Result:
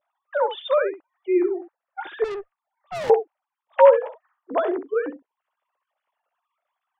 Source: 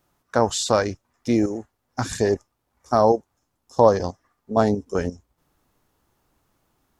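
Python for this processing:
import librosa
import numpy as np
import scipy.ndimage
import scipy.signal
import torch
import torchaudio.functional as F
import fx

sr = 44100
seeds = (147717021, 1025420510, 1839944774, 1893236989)

y = fx.sine_speech(x, sr)
y = fx.room_early_taps(y, sr, ms=(13, 65), db=(-11.5, -10.5))
y = fx.tube_stage(y, sr, drive_db=28.0, bias=0.35, at=(2.24, 3.1))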